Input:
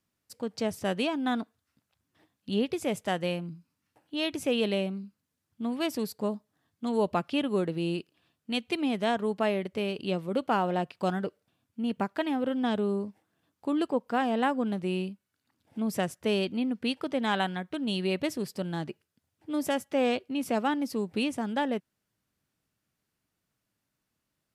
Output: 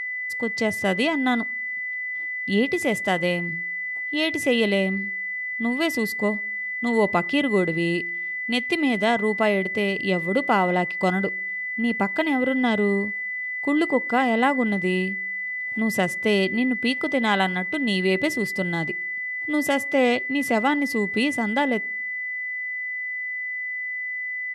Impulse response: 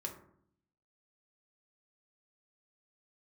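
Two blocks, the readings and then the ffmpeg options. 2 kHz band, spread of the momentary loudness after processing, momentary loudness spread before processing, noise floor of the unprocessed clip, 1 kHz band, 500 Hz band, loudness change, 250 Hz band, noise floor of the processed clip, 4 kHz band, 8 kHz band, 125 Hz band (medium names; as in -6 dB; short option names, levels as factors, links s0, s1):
+16.5 dB, 7 LU, 10 LU, -83 dBFS, +6.0 dB, +6.0 dB, +7.0 dB, +6.0 dB, -30 dBFS, +6.0 dB, +6.0 dB, +6.0 dB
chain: -filter_complex "[0:a]aeval=exprs='val(0)+0.0224*sin(2*PI*2000*n/s)':c=same,asplit=2[s0][s1];[1:a]atrim=start_sample=2205[s2];[s1][s2]afir=irnorm=-1:irlink=0,volume=0.119[s3];[s0][s3]amix=inputs=2:normalize=0,aresample=32000,aresample=44100,volume=1.88"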